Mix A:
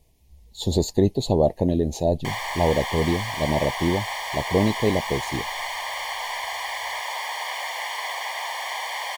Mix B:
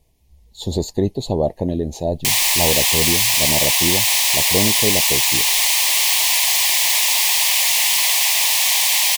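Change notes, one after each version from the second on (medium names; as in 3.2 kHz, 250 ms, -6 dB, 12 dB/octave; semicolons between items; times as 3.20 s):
background: remove Savitzky-Golay filter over 41 samples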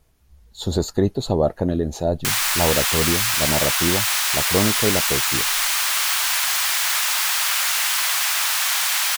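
background -5.0 dB; master: remove Butterworth band-stop 1.4 kHz, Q 1.4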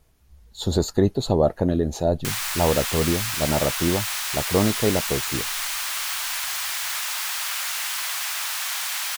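background -7.0 dB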